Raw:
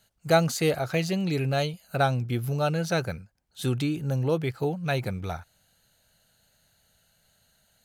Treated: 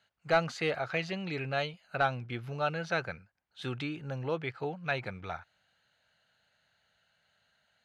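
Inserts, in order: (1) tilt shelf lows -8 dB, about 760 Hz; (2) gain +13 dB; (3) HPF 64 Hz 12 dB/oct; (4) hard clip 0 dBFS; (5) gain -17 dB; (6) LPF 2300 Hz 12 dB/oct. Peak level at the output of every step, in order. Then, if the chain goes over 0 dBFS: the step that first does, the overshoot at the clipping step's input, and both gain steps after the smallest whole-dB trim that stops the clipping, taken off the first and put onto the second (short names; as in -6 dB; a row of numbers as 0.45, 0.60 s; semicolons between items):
-5.5, +7.5, +7.5, 0.0, -17.0, -16.5 dBFS; step 2, 7.5 dB; step 2 +5 dB, step 5 -9 dB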